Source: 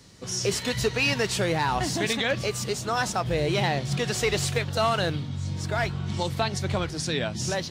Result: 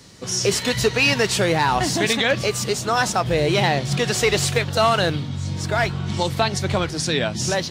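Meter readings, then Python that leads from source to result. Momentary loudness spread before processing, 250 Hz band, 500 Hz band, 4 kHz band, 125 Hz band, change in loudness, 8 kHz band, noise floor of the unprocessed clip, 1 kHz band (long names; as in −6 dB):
5 LU, +5.5 dB, +6.5 dB, +6.5 dB, +4.5 dB, +6.0 dB, +6.5 dB, −36 dBFS, +6.5 dB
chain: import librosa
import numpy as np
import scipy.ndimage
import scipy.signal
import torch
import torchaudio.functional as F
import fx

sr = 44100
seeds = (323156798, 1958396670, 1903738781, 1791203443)

y = fx.low_shelf(x, sr, hz=100.0, db=-5.5)
y = y * librosa.db_to_amplitude(6.5)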